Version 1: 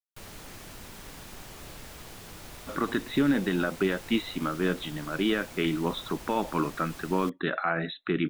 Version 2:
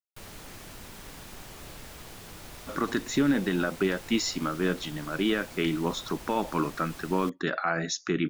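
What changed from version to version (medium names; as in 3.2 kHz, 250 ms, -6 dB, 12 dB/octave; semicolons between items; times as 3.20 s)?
speech: remove brick-wall FIR low-pass 4.1 kHz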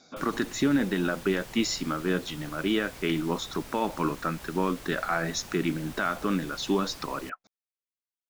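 speech: entry -2.55 s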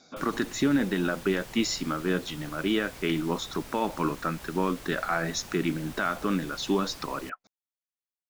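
no change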